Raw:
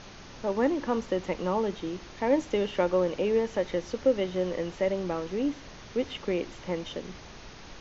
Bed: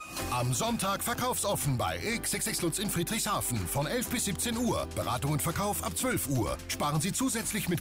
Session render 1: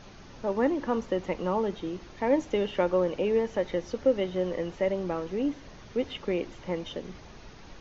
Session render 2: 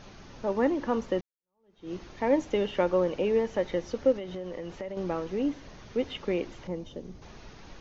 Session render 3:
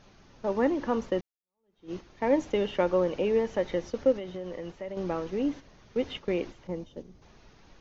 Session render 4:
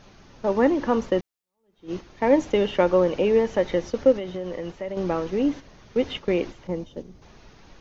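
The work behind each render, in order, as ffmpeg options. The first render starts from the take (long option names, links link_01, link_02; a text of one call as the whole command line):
ffmpeg -i in.wav -af "afftdn=noise_reduction=6:noise_floor=-47" out.wav
ffmpeg -i in.wav -filter_complex "[0:a]asettb=1/sr,asplit=3[link_01][link_02][link_03];[link_01]atrim=end=4.124[link_04];[link_02]atrim=start=4.12:end=4.97,asetpts=PTS-STARTPTS,afade=type=in:duration=0.004:curve=qsin,afade=type=out:start_time=0.846:duration=0.004:curve=qsin,acompressor=threshold=-33dB:ratio=6:attack=3.2:release=140:knee=1:detection=peak[link_05];[link_03]atrim=start=4.966[link_06];[link_04][link_05]acrossfade=duration=0.004:curve1=hsin:curve2=qsin[link_07];[link_07][link_06]acrossfade=duration=0.004:curve1=qsin:curve2=hsin,asettb=1/sr,asplit=3[link_08][link_09][link_10];[link_08]atrim=end=6.674[link_11];[link_09]atrim=start=6.67:end=7.22,asetpts=PTS-STARTPTS,afade=type=in:duration=0.004:curve=qsin,afade=type=out:start_time=0.546:duration=0.004:curve=qsin,equalizer=frequency=2100:width=0.37:gain=-13[link_12];[link_10]atrim=start=7.216[link_13];[link_11][link_12]acrossfade=duration=0.004:curve1=hsin:curve2=qsin[link_14];[link_14][link_13]acrossfade=duration=0.004:curve1=qsin:curve2=hsin,asplit=2[link_15][link_16];[link_15]atrim=end=1.21,asetpts=PTS-STARTPTS,afade=type=out:start_time=1.206:duration=0.004:curve=hsin[link_17];[link_16]atrim=start=1.21,asetpts=PTS-STARTPTS,afade=type=in:duration=0.71:curve=exp[link_18];[link_17][link_18]concat=n=2:v=0:a=1" out.wav
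ffmpeg -i in.wav -af "agate=range=-8dB:threshold=-38dB:ratio=16:detection=peak" out.wav
ffmpeg -i in.wav -af "volume=6dB" out.wav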